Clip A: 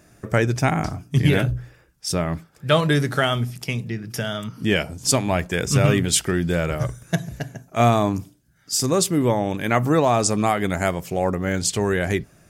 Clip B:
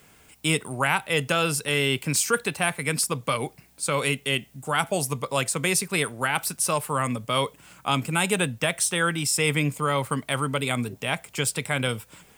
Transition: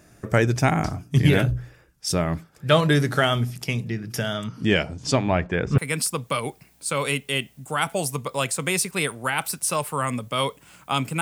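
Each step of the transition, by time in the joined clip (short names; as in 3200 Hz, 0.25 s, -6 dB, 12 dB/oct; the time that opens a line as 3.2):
clip A
4.34–5.78 LPF 11000 Hz -> 1700 Hz
5.78 switch to clip B from 2.75 s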